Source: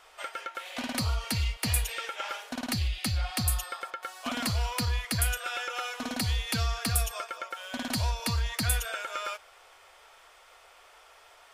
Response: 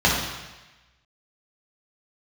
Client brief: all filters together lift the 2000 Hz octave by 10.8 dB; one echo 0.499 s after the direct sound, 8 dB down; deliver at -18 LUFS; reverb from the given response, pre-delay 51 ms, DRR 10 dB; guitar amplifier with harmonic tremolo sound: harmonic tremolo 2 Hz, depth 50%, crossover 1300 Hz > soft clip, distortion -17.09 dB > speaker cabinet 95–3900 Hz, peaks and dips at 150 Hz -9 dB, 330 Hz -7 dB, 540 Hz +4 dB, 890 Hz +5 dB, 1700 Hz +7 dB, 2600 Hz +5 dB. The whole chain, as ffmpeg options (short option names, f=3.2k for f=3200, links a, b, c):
-filter_complex "[0:a]equalizer=f=2k:t=o:g=8,aecho=1:1:499:0.398,asplit=2[a][b];[1:a]atrim=start_sample=2205,adelay=51[c];[b][c]afir=irnorm=-1:irlink=0,volume=-30dB[d];[a][d]amix=inputs=2:normalize=0,acrossover=split=1300[e][f];[e]aeval=exprs='val(0)*(1-0.5/2+0.5/2*cos(2*PI*2*n/s))':c=same[g];[f]aeval=exprs='val(0)*(1-0.5/2-0.5/2*cos(2*PI*2*n/s))':c=same[h];[g][h]amix=inputs=2:normalize=0,asoftclip=threshold=-22.5dB,highpass=95,equalizer=f=150:t=q:w=4:g=-9,equalizer=f=330:t=q:w=4:g=-7,equalizer=f=540:t=q:w=4:g=4,equalizer=f=890:t=q:w=4:g=5,equalizer=f=1.7k:t=q:w=4:g=7,equalizer=f=2.6k:t=q:w=4:g=5,lowpass=f=3.9k:w=0.5412,lowpass=f=3.9k:w=1.3066,volume=12.5dB"